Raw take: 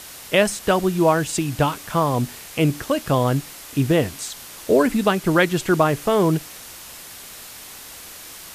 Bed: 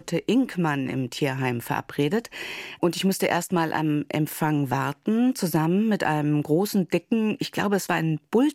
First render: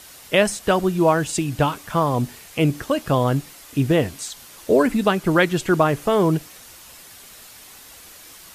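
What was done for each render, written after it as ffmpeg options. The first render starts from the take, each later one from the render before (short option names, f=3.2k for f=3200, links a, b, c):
-af "afftdn=nr=6:nf=-40"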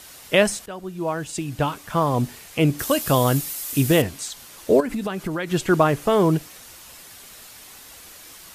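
-filter_complex "[0:a]asettb=1/sr,asplit=3[a][b][c];[a]atrim=end=2.794[d];[b]atrim=start=2.79:end=4.02,asetpts=PTS-STARTPTS,afade=t=in:d=0.004:c=qsin,afade=t=out:st=1.226:d=0.004:c=qsin,aemphasis=mode=production:type=75kf[e];[c]atrim=start=4.016[f];[d][e]acrossfade=d=0.004:c1=hsin:c2=qsin[g];[g][f]acrossfade=d=0.004:c1=qsin:c2=hsin,asettb=1/sr,asplit=3[h][i][j];[h]atrim=end=4.804[k];[i]atrim=start=4.8:end=5.52,asetpts=PTS-STARTPTS,afade=t=in:d=0.004:c=qsin,afade=t=out:st=0.716:d=0.004:c=qsin,acompressor=threshold=-23dB:ratio=6:attack=3.2:release=140:knee=1:detection=peak[l];[j]atrim=start=5.516[m];[k][l]acrossfade=d=0.004:c1=hsin:c2=qsin[n];[n][m]acrossfade=d=0.004:c1=qsin:c2=hsin,asplit=2[o][p];[o]atrim=end=0.66,asetpts=PTS-STARTPTS,afade=t=out:st=0.656:d=0.004:c=hsin:silence=0.112202[q];[p]atrim=start=0.66,asetpts=PTS-STARTPTS,afade=t=in:d=1.54:silence=0.112202[r];[q][r]concat=n=2:v=0:a=1"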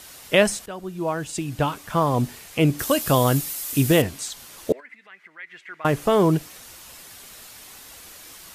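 -filter_complex "[0:a]asettb=1/sr,asplit=3[a][b][c];[a]atrim=end=4.724[d];[b]atrim=start=4.72:end=5.85,asetpts=PTS-STARTPTS,afade=t=in:d=0.004:c=qsin,afade=t=out:st=1.126:d=0.004:c=qsin,bandpass=f=2k:t=q:w=6.9[e];[c]atrim=start=5.846[f];[d][e]acrossfade=d=0.004:c1=hsin:c2=qsin[g];[g][f]acrossfade=d=0.004:c1=qsin:c2=hsin"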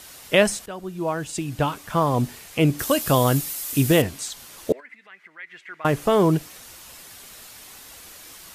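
-af anull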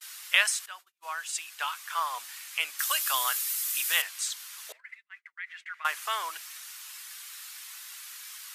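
-af "highpass=f=1.2k:w=0.5412,highpass=f=1.2k:w=1.3066,agate=range=-38dB:threshold=-47dB:ratio=16:detection=peak"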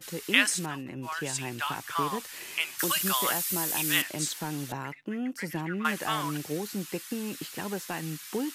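-filter_complex "[1:a]volume=-11.5dB[a];[0:a][a]amix=inputs=2:normalize=0"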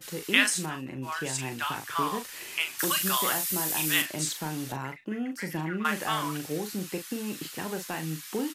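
-filter_complex "[0:a]asplit=2[a][b];[b]adelay=38,volume=-8dB[c];[a][c]amix=inputs=2:normalize=0"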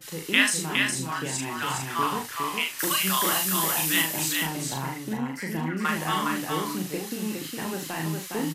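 -filter_complex "[0:a]asplit=2[a][b];[b]adelay=37,volume=-3.5dB[c];[a][c]amix=inputs=2:normalize=0,aecho=1:1:411:0.631"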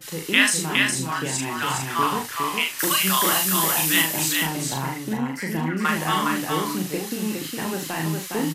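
-af "volume=4dB,alimiter=limit=-3dB:level=0:latency=1"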